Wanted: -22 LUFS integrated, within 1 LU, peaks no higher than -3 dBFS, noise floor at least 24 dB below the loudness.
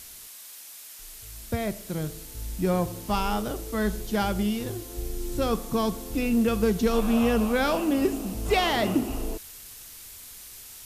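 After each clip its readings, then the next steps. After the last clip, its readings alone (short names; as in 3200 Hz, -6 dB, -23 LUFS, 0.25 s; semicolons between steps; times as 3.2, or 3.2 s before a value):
noise floor -45 dBFS; noise floor target -51 dBFS; loudness -27.0 LUFS; peak -10.5 dBFS; loudness target -22.0 LUFS
-> denoiser 6 dB, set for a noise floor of -45 dBFS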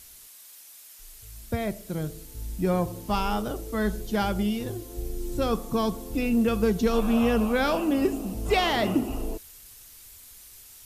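noise floor -49 dBFS; noise floor target -51 dBFS
-> denoiser 6 dB, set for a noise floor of -49 dBFS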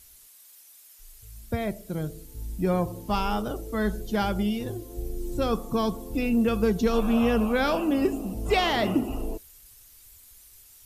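noise floor -53 dBFS; loudness -27.0 LUFS; peak -10.5 dBFS; loudness target -22.0 LUFS
-> gain +5 dB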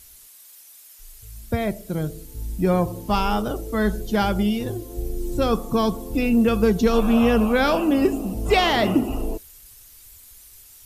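loudness -22.0 LUFS; peak -5.5 dBFS; noise floor -48 dBFS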